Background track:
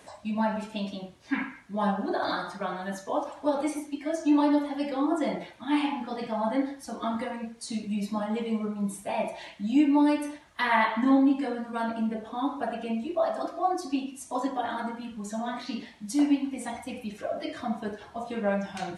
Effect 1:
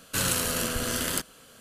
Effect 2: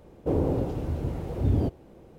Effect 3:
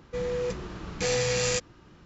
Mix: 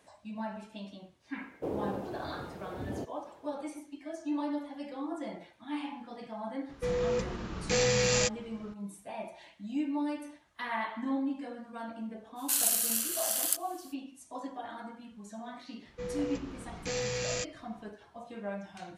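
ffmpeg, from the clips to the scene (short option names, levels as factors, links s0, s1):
-filter_complex "[3:a]asplit=2[s0][s1];[0:a]volume=0.282[s2];[2:a]highpass=f=490:p=1[s3];[1:a]aderivative[s4];[s3]atrim=end=2.18,asetpts=PTS-STARTPTS,volume=0.596,afade=t=in:d=0.004:c=hsin,afade=t=out:st=2.176:d=0.004:c=hsin,adelay=1360[s5];[s0]atrim=end=2.05,asetpts=PTS-STARTPTS,volume=0.944,afade=t=in:d=0.004:c=hsin,afade=t=out:st=2.046:d=0.004:c=hsin,adelay=6690[s6];[s4]atrim=end=1.6,asetpts=PTS-STARTPTS,volume=0.944,afade=t=in:d=0.05,afade=t=out:st=1.55:d=0.05,adelay=12350[s7];[s1]atrim=end=2.05,asetpts=PTS-STARTPTS,volume=0.422,afade=t=in:d=0.004:c=hsin,afade=t=out:st=2.046:d=0.004:c=hsin,adelay=15850[s8];[s2][s5][s6][s7][s8]amix=inputs=5:normalize=0"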